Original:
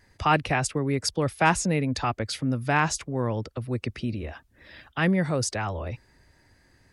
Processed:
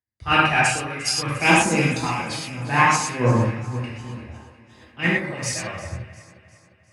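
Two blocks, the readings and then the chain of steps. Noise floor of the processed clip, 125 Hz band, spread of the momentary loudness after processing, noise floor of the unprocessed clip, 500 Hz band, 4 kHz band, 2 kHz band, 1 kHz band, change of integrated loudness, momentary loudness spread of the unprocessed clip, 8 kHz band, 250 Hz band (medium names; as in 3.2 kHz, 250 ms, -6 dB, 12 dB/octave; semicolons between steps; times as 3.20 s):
-57 dBFS, +3.0 dB, 17 LU, -62 dBFS, +2.0 dB, +7.0 dB, +8.0 dB, +5.5 dB, +5.5 dB, 11 LU, +5.5 dB, +2.0 dB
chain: high-pass 100 Hz; gate -49 dBFS, range -43 dB; dynamic bell 2.3 kHz, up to +7 dB, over -43 dBFS, Q 1.8; upward compressor, threshold -30 dBFS; phaser 0.62 Hz, delay 1.8 ms, feedback 52%; echo whose repeats swap between lows and highs 176 ms, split 1.4 kHz, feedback 83%, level -8 dB; gated-style reverb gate 150 ms flat, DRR -4.5 dB; three bands expanded up and down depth 100%; trim -4.5 dB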